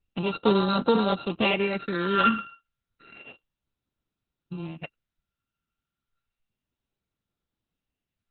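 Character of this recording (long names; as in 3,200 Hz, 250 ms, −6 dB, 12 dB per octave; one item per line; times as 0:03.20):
a buzz of ramps at a fixed pitch in blocks of 32 samples
phaser sweep stages 12, 0.31 Hz, lowest notch 690–2,300 Hz
Opus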